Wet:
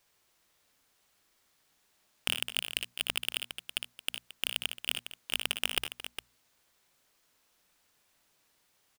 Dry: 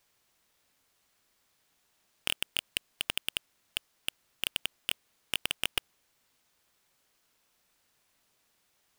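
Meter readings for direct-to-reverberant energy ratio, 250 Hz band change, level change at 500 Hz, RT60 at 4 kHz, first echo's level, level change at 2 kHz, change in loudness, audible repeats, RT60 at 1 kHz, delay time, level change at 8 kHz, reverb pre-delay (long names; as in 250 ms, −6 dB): no reverb audible, +0.5 dB, +1.0 dB, no reverb audible, −7.5 dB, +1.0 dB, +1.0 dB, 3, no reverb audible, 59 ms, +1.0 dB, no reverb audible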